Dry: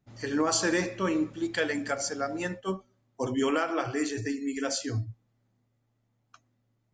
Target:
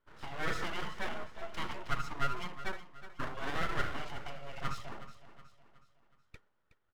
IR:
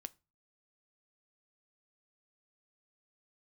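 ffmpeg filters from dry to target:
-filter_complex "[0:a]lowpass=frequency=3300:poles=1,equalizer=frequency=370:width=1.9:gain=2.5,asplit=2[link_01][link_02];[link_02]acompressor=threshold=-39dB:ratio=6,volume=1dB[link_03];[link_01][link_03]amix=inputs=2:normalize=0,asoftclip=type=hard:threshold=-23dB,asplit=3[link_04][link_05][link_06];[link_04]bandpass=frequency=730:width_type=q:width=8,volume=0dB[link_07];[link_05]bandpass=frequency=1090:width_type=q:width=8,volume=-6dB[link_08];[link_06]bandpass=frequency=2440:width_type=q:width=8,volume=-9dB[link_09];[link_07][link_08][link_09]amix=inputs=3:normalize=0,aeval=exprs='abs(val(0))':channel_layout=same,asplit=2[link_10][link_11];[link_11]aecho=0:1:369|738|1107|1476:0.2|0.0878|0.0386|0.017[link_12];[link_10][link_12]amix=inputs=2:normalize=0,volume=8dB" -ar 48000 -c:a libmp3lame -b:a 128k

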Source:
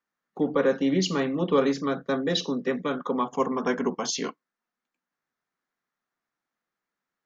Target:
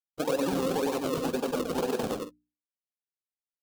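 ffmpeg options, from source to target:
ffmpeg -i in.wav -af "agate=range=-33dB:threshold=-37dB:ratio=3:detection=peak,acrusher=samples=38:mix=1:aa=0.000001:lfo=1:lforange=38:lforate=0.99,equalizer=frequency=100:width_type=o:width=0.33:gain=-8,equalizer=frequency=500:width_type=o:width=0.33:gain=6,equalizer=frequency=800:width_type=o:width=0.33:gain=6,equalizer=frequency=2000:width_type=o:width=0.33:gain=-10,aecho=1:1:196|294:0.596|0.168,alimiter=limit=-17.5dB:level=0:latency=1:release=106,atempo=2,lowshelf=frequency=62:gain=-10,bandreject=frequency=60:width_type=h:width=6,bandreject=frequency=120:width_type=h:width=6,bandreject=frequency=180:width_type=h:width=6,bandreject=frequency=240:width_type=h:width=6,bandreject=frequency=300:width_type=h:width=6,volume=-1dB" out.wav

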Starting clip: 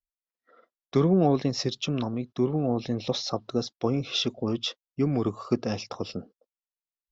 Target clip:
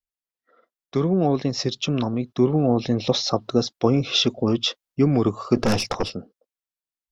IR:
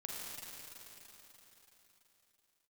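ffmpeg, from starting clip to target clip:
-filter_complex "[0:a]dynaudnorm=framelen=290:gausssize=11:maxgain=11.5dB,asplit=3[link_01][link_02][link_03];[link_01]afade=type=out:start_time=5.55:duration=0.02[link_04];[link_02]aeval=exprs='0.282*(cos(1*acos(clip(val(0)/0.282,-1,1)))-cos(1*PI/2))+0.0794*(cos(5*acos(clip(val(0)/0.282,-1,1)))-cos(5*PI/2))+0.0631*(cos(6*acos(clip(val(0)/0.282,-1,1)))-cos(6*PI/2))':channel_layout=same,afade=type=in:start_time=5.55:duration=0.02,afade=type=out:start_time=6.08:duration=0.02[link_05];[link_03]afade=type=in:start_time=6.08:duration=0.02[link_06];[link_04][link_05][link_06]amix=inputs=3:normalize=0,volume=-1.5dB"

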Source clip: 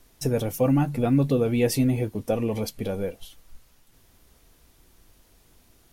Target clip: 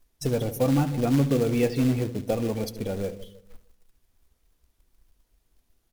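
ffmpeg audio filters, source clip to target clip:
ffmpeg -i in.wav -filter_complex "[0:a]asettb=1/sr,asplit=3[link_01][link_02][link_03];[link_01]atrim=end=0.974[link_04];[link_02]atrim=start=0.97:end=1.76,asetpts=PTS-STARTPTS,afade=type=in:duration=0.004:curve=qsin,afade=type=out:start_time=0.786:duration=0.004:curve=qsin,lowpass=frequency=4000:width=0.5412,lowpass=frequency=4000:width=1.3066[link_05];[link_03]atrim=start=1.756[link_06];[link_04][link_05]acrossfade=duration=0.004:curve1=hsin:curve2=qsin[link_07];[link_07][link_06]acrossfade=duration=0.004:curve1=qsin:curve2=hsin,asplit=2[link_08][link_09];[link_09]adelay=153,lowpass=frequency=1400:poles=1,volume=-14dB,asplit=2[link_10][link_11];[link_11]adelay=153,lowpass=frequency=1400:poles=1,volume=0.52,asplit=2[link_12][link_13];[link_13]adelay=153,lowpass=frequency=1400:poles=1,volume=0.52,asplit=2[link_14][link_15];[link_15]adelay=153,lowpass=frequency=1400:poles=1,volume=0.52,asplit=2[link_16][link_17];[link_17]adelay=153,lowpass=frequency=1400:poles=1,volume=0.52[link_18];[link_10][link_12][link_14][link_16][link_18]amix=inputs=5:normalize=0[link_19];[link_08][link_19]amix=inputs=2:normalize=0,afftdn=noise_reduction=14:noise_floor=-40,acrusher=bits=4:mode=log:mix=0:aa=0.000001,asplit=2[link_20][link_21];[link_21]aecho=0:1:71:0.168[link_22];[link_20][link_22]amix=inputs=2:normalize=0,volume=-1.5dB" out.wav

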